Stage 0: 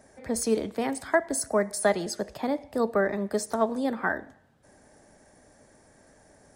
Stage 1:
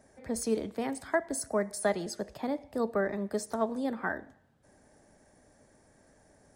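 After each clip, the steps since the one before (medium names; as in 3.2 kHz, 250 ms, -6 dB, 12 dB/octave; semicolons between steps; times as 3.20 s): bass shelf 360 Hz +3 dB; trim -6 dB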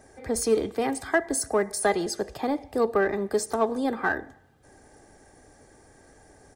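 comb 2.5 ms, depth 44%; in parallel at -7.5 dB: saturation -31.5 dBFS, distortion -7 dB; on the sum: trim +4.5 dB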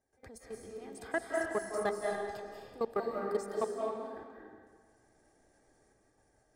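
level held to a coarse grid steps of 21 dB; trance gate ".xx..xxxxxxxxxx." 119 bpm -12 dB; reverberation RT60 1.6 s, pre-delay 146 ms, DRR -1.5 dB; trim -8.5 dB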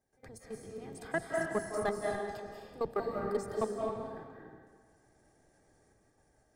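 octave divider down 1 oct, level -2 dB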